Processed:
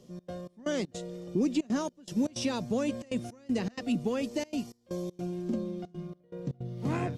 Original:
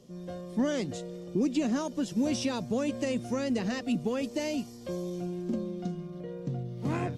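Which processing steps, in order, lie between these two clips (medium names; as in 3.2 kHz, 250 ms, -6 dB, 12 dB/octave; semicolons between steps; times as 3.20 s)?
trance gate "xx.xx..xx.xxxxx" 159 bpm -24 dB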